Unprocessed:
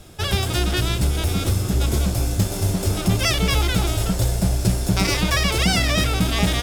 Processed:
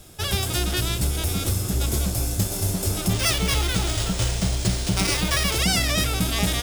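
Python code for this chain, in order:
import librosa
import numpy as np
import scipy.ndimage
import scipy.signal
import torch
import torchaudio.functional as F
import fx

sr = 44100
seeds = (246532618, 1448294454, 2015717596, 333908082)

y = fx.high_shelf(x, sr, hz=5900.0, db=9.5)
y = fx.resample_bad(y, sr, factor=3, down='none', up='hold', at=(3.13, 5.56))
y = y * librosa.db_to_amplitude(-4.0)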